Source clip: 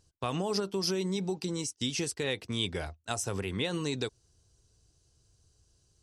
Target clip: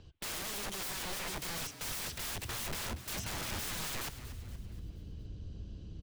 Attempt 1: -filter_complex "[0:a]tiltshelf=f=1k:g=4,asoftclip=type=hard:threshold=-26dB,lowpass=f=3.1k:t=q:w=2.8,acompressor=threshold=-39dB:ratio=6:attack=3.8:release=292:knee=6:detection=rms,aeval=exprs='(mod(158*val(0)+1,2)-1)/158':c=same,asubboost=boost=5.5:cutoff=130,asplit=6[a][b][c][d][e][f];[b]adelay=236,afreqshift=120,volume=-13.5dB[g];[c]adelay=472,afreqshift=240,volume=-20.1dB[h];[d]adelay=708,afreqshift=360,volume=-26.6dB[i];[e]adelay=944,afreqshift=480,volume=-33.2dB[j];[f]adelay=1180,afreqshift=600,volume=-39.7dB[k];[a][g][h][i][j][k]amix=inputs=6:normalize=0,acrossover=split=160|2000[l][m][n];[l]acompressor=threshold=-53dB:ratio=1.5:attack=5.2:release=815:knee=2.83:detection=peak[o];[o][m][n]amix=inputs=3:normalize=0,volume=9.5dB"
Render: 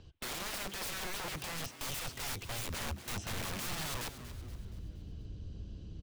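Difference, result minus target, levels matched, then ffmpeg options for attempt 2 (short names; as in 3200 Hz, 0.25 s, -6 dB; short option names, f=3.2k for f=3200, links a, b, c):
compressor: peak gain reduction +6 dB
-filter_complex "[0:a]tiltshelf=f=1k:g=4,asoftclip=type=hard:threshold=-26dB,lowpass=f=3.1k:t=q:w=2.8,acompressor=threshold=-31.5dB:ratio=6:attack=3.8:release=292:knee=6:detection=rms,aeval=exprs='(mod(158*val(0)+1,2)-1)/158':c=same,asubboost=boost=5.5:cutoff=130,asplit=6[a][b][c][d][e][f];[b]adelay=236,afreqshift=120,volume=-13.5dB[g];[c]adelay=472,afreqshift=240,volume=-20.1dB[h];[d]adelay=708,afreqshift=360,volume=-26.6dB[i];[e]adelay=944,afreqshift=480,volume=-33.2dB[j];[f]adelay=1180,afreqshift=600,volume=-39.7dB[k];[a][g][h][i][j][k]amix=inputs=6:normalize=0,acrossover=split=160|2000[l][m][n];[l]acompressor=threshold=-53dB:ratio=1.5:attack=5.2:release=815:knee=2.83:detection=peak[o];[o][m][n]amix=inputs=3:normalize=0,volume=9.5dB"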